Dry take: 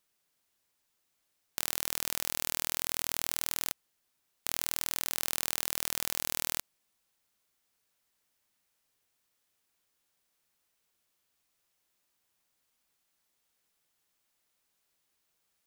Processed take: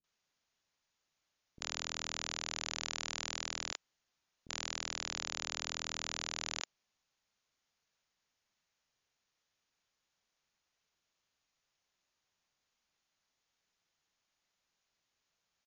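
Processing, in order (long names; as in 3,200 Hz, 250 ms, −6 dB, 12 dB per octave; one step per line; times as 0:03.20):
linear-phase brick-wall low-pass 7,100 Hz
multiband delay without the direct sound lows, highs 40 ms, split 340 Hz
level −2 dB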